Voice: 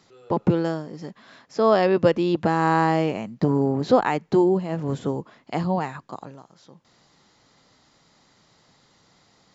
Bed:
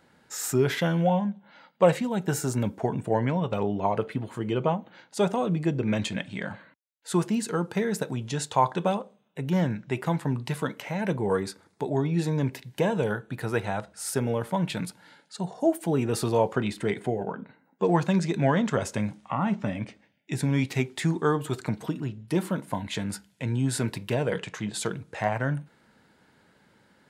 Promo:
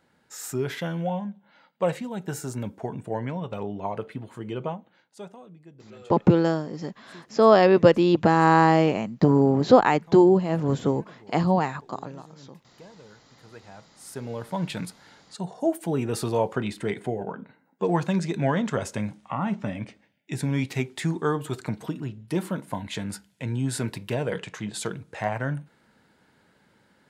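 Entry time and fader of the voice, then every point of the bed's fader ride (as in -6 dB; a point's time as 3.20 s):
5.80 s, +2.5 dB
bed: 4.64 s -5 dB
5.58 s -23.5 dB
13.32 s -23.5 dB
14.65 s -1 dB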